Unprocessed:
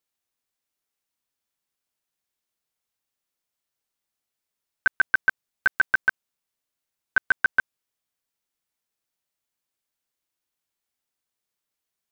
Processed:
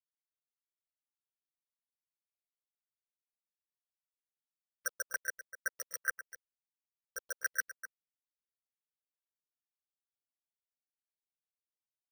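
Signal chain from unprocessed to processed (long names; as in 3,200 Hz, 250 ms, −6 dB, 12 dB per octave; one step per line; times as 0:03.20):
three-way crossover with the lows and the highs turned down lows −16 dB, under 430 Hz, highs −14 dB, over 4,000 Hz
notch filter 1,500 Hz, Q 5.8
harmonic and percussive parts rebalanced percussive +9 dB
graphic EQ with 10 bands 125 Hz −9 dB, 250 Hz +4 dB, 500 Hz +9 dB, 1,000 Hz −4 dB, 2,000 Hz +5 dB
0:05.72–0:07.20: compressor whose output falls as the input rises −27 dBFS, ratio −1
brickwall limiter −13.5 dBFS, peak gain reduction 11.5 dB
rotating-speaker cabinet horn 0.6 Hz
spectral peaks only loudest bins 32
bit reduction 9 bits
slap from a distant wall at 43 metres, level −13 dB
bad sample-rate conversion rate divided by 6×, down filtered, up hold
notch on a step sequencer 3.5 Hz 750–4,000 Hz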